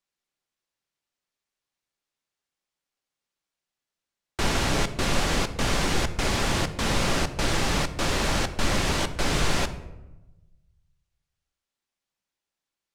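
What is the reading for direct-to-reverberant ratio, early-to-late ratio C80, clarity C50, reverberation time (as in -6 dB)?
9.5 dB, 15.0 dB, 13.0 dB, 1.0 s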